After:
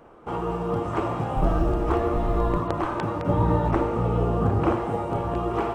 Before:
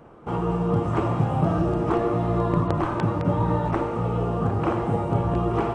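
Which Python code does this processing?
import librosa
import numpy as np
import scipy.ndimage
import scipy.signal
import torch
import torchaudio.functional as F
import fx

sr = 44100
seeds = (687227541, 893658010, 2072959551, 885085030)

y = fx.octave_divider(x, sr, octaves=2, level_db=2.0, at=(1.36, 2.57))
y = fx.peak_eq(y, sr, hz=140.0, db=-8.5, octaves=1.5)
y = fx.quant_float(y, sr, bits=6)
y = fx.low_shelf(y, sr, hz=310.0, db=9.5, at=(3.29, 4.76))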